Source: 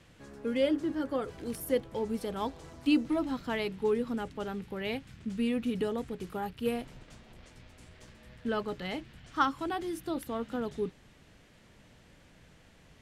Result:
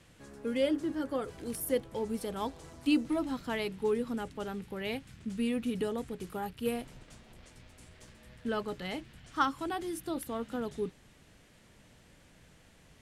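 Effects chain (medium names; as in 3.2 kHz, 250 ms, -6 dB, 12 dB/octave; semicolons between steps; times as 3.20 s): peaking EQ 10 kHz +6.5 dB 1.1 oct; trim -1.5 dB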